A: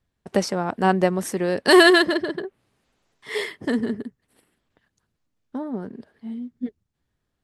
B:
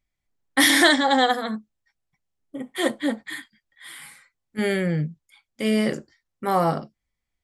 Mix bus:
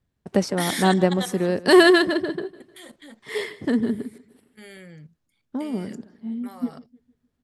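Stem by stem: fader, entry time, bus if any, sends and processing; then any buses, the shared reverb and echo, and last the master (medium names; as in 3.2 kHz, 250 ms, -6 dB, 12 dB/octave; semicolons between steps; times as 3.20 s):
-3.0 dB, 0.00 s, no send, echo send -19 dB, peaking EQ 150 Hz +6 dB 3 oct
-13.5 dB, 0.00 s, no send, no echo send, treble shelf 2.1 kHz +10.5 dB; level held to a coarse grid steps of 15 dB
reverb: none
echo: feedback delay 152 ms, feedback 40%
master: none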